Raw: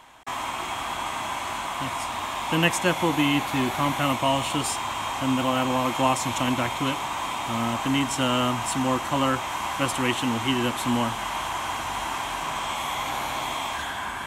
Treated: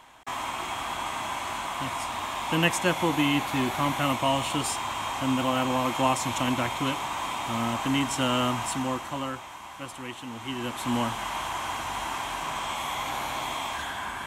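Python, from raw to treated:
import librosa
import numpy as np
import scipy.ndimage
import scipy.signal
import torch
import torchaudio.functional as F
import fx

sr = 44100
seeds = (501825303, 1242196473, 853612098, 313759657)

y = fx.gain(x, sr, db=fx.line((8.6, -2.0), (9.61, -13.5), (10.26, -13.5), (10.97, -2.5)))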